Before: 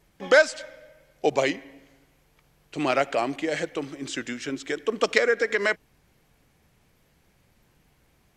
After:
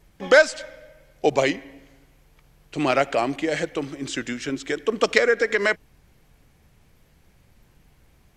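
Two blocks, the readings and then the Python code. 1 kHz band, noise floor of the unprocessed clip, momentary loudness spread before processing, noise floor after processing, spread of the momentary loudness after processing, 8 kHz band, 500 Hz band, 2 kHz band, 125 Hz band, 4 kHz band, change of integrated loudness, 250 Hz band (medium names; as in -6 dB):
+2.5 dB, -65 dBFS, 14 LU, -59 dBFS, 14 LU, +2.5 dB, +3.0 dB, +2.5 dB, +5.5 dB, +2.5 dB, +3.0 dB, +3.5 dB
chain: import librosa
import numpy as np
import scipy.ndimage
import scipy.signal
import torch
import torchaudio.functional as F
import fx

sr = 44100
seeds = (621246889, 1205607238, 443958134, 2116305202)

y = fx.low_shelf(x, sr, hz=96.0, db=9.0)
y = F.gain(torch.from_numpy(y), 2.5).numpy()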